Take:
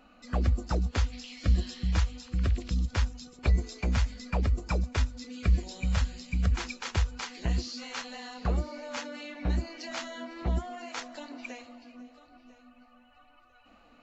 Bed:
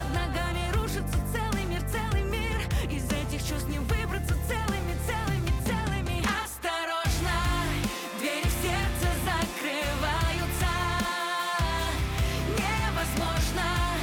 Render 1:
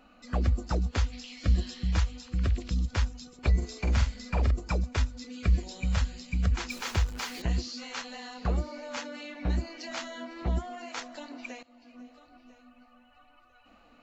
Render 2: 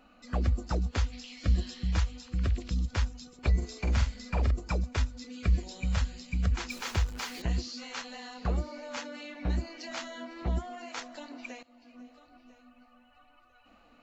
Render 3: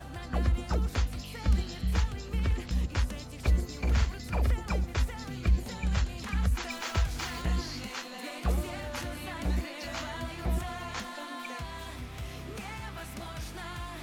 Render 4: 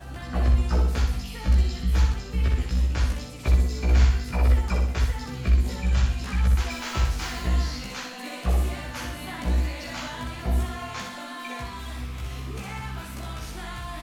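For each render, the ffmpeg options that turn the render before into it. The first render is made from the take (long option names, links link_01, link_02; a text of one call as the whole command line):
ffmpeg -i in.wav -filter_complex "[0:a]asettb=1/sr,asplit=3[link_01][link_02][link_03];[link_01]atrim=end=3.574[link_04];[link_02]atrim=start=3.57:end=4.51,asetpts=PTS-STARTPTS,afade=type=in:duration=0.004:curve=qsin,afade=type=out:start_time=0.936:duration=0.004:curve=qsin,asplit=2[link_05][link_06];[link_06]adelay=46,volume=-5.5dB[link_07];[link_05][link_07]amix=inputs=2:normalize=0,atrim=end_sample=41454[link_08];[link_03]atrim=start=4.506[link_09];[link_04][link_08]acrossfade=duration=0.004:curve1=hsin:curve2=qsin[link_10];[link_10][link_09]acrossfade=duration=0.004:curve1=qsin:curve2=hsin,asettb=1/sr,asplit=3[link_11][link_12][link_13];[link_11]atrim=end=6.704[link_14];[link_12]atrim=start=6.7:end=7.42,asetpts=PTS-STARTPTS,afade=type=in:duration=0.004:curve=qsin,afade=type=out:start_time=0.716:duration=0.004:curve=qsin,aeval=exprs='val(0)+0.5*0.0106*sgn(val(0))':channel_layout=same[link_15];[link_13]atrim=start=7.416[link_16];[link_14][link_15]acrossfade=duration=0.004:curve1=hsin:curve2=qsin[link_17];[link_17][link_16]acrossfade=duration=0.004:curve1=qsin:curve2=hsin,asplit=2[link_18][link_19];[link_18]atrim=end=11.63,asetpts=PTS-STARTPTS,afade=type=out:start_time=11.626:duration=0.004:curve=hsin:silence=0.141254[link_20];[link_19]atrim=start=11.63,asetpts=PTS-STARTPTS,afade=type=in:duration=0.4:silence=0.141254[link_21];[link_20][link_21]concat=n=2:v=0:a=1" out.wav
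ffmpeg -i in.wav -af "volume=-1.5dB" out.wav
ffmpeg -i in.wav -i bed.wav -filter_complex "[1:a]volume=-12.5dB[link_01];[0:a][link_01]amix=inputs=2:normalize=0" out.wav
ffmpeg -i in.wav -filter_complex "[0:a]asplit=2[link_01][link_02];[link_02]adelay=16,volume=-2dB[link_03];[link_01][link_03]amix=inputs=2:normalize=0,aecho=1:1:62|124|186|248|310|372:0.596|0.274|0.126|0.058|0.0267|0.0123" out.wav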